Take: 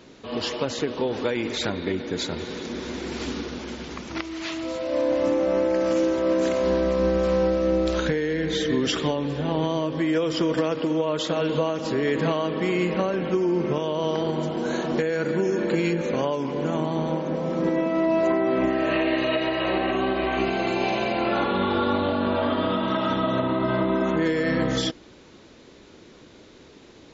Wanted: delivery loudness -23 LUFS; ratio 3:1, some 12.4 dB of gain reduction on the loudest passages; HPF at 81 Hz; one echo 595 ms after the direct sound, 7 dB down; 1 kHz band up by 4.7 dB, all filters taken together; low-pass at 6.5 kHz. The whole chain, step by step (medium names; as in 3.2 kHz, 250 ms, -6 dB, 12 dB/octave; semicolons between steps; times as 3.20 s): high-pass 81 Hz; low-pass 6.5 kHz; peaking EQ 1 kHz +6 dB; compression 3:1, threshold -35 dBFS; delay 595 ms -7 dB; trim +11 dB